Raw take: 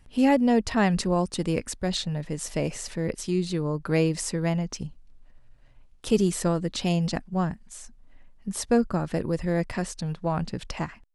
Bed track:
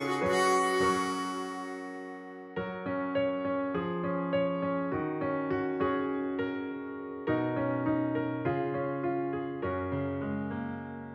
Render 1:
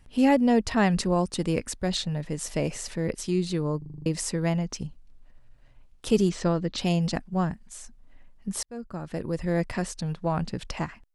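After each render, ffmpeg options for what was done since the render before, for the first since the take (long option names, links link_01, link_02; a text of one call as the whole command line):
ffmpeg -i in.wav -filter_complex "[0:a]asettb=1/sr,asplit=3[link_01][link_02][link_03];[link_01]atrim=end=6.294[link_04];[link_02]atrim=start=6.29:end=6.78,asetpts=PTS-STARTPTS,afade=type=in:duration=0.004:curve=qsin,afade=type=out:start_time=0.486:duration=0.004:curve=qsin,lowpass=frequency=5900:width=0.5412,lowpass=frequency=5900:width=1.3066[link_05];[link_03]atrim=start=6.776[link_06];[link_04][link_05]acrossfade=duration=0.004:curve1=hsin:curve2=qsin[link_07];[link_07][link_06]acrossfade=duration=0.004:curve1=qsin:curve2=hsin,asplit=9[link_08][link_09][link_10][link_11][link_12][link_13][link_14][link_15][link_16];[link_08]atrim=end=3.822[link_17];[link_09]atrim=start=3.778:end=3.822[link_18];[link_10]atrim=start=3.778:end=3.822[link_19];[link_11]atrim=start=3.778:end=3.822[link_20];[link_12]atrim=start=3.778:end=3.822[link_21];[link_13]atrim=start=3.778:end=3.822[link_22];[link_14]atrim=start=3.778:end=3.822[link_23];[link_15]atrim=start=4.058:end=8.63,asetpts=PTS-STARTPTS,afade=type=out:start_time=4.568:duration=0.004:curve=hsin[link_24];[link_16]atrim=start=8.63,asetpts=PTS-STARTPTS,afade=type=in:duration=0.93[link_25];[link_17][link_18]acrossfade=duration=0.004:curve1=hsin:curve2=hsin[link_26];[link_26][link_19]acrossfade=duration=0.004:curve1=hsin:curve2=hsin[link_27];[link_27][link_20]acrossfade=duration=0.004:curve1=hsin:curve2=hsin[link_28];[link_28][link_21]acrossfade=duration=0.004:curve1=hsin:curve2=hsin[link_29];[link_29][link_22]acrossfade=duration=0.004:curve1=hsin:curve2=hsin[link_30];[link_30][link_23]acrossfade=duration=0.004:curve1=hsin:curve2=hsin[link_31];[link_24][link_25]concat=n=2:v=0:a=1[link_32];[link_31][link_32]acrossfade=duration=0.004:curve1=hsin:curve2=hsin" out.wav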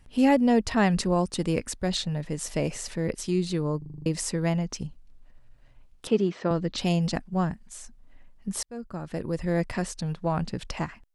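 ffmpeg -i in.wav -filter_complex "[0:a]asettb=1/sr,asplit=3[link_01][link_02][link_03];[link_01]atrim=end=6.074[link_04];[link_02]atrim=start=6.07:end=6.51,asetpts=PTS-STARTPTS,afade=type=in:duration=0.004:curve=qsin,afade=type=out:start_time=0.436:duration=0.004:curve=qsin,highpass=210,lowpass=2700[link_05];[link_03]atrim=start=6.506[link_06];[link_04][link_05]acrossfade=duration=0.004:curve1=hsin:curve2=qsin[link_07];[link_07][link_06]acrossfade=duration=0.004:curve1=qsin:curve2=hsin" out.wav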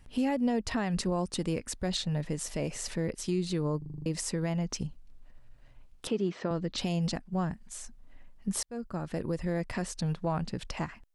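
ffmpeg -i in.wav -af "alimiter=limit=-21dB:level=0:latency=1:release=235" out.wav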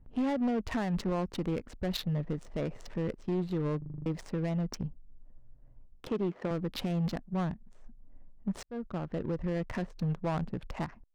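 ffmpeg -i in.wav -af "asoftclip=type=hard:threshold=-25.5dB,adynamicsmooth=sensitivity=7.5:basefreq=590" out.wav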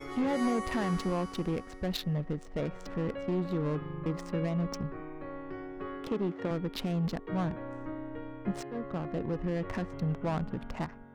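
ffmpeg -i in.wav -i bed.wav -filter_complex "[1:a]volume=-10.5dB[link_01];[0:a][link_01]amix=inputs=2:normalize=0" out.wav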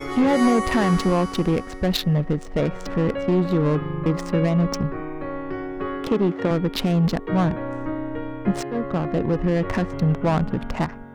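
ffmpeg -i in.wav -af "volume=11.5dB" out.wav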